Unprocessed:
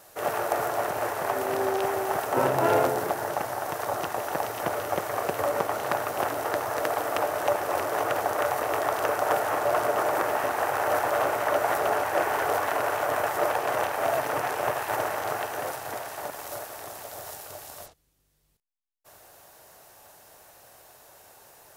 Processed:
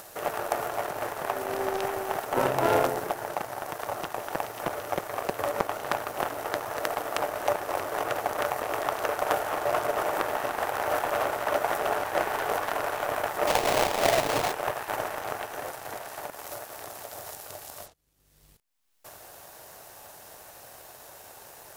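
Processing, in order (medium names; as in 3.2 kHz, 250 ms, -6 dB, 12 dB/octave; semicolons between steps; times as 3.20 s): 13.47–14.52 s: square wave that keeps the level; power-law waveshaper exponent 1.4; upward compressor, threshold -33 dBFS; trim +3 dB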